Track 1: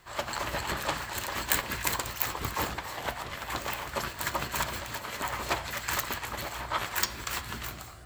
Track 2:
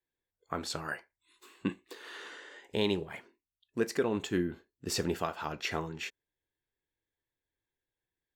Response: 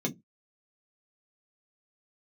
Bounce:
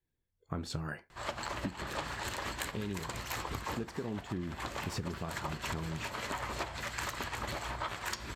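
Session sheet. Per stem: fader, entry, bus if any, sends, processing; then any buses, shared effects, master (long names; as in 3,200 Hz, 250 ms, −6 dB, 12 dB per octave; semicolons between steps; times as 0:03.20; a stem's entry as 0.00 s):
−4.0 dB, 1.10 s, no send, Bessel low-pass filter 8,300 Hz, order 2
−2.5 dB, 0.00 s, no send, bass and treble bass +13 dB, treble −2 dB; amplitude modulation by smooth noise, depth 55%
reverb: not used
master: speech leveller within 4 dB 0.5 s; low-shelf EQ 490 Hz +3 dB; downward compressor 12 to 1, threshold −33 dBFS, peak gain reduction 12.5 dB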